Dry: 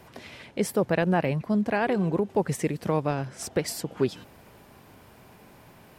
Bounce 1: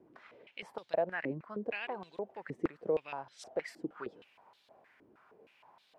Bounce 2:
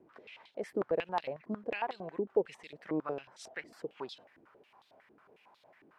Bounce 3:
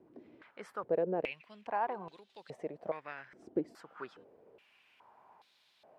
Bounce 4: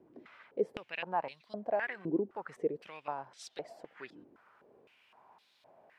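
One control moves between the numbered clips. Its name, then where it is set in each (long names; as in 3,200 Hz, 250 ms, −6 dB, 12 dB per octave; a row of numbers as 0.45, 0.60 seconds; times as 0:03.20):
band-pass on a step sequencer, speed: 6.4, 11, 2.4, 3.9 Hertz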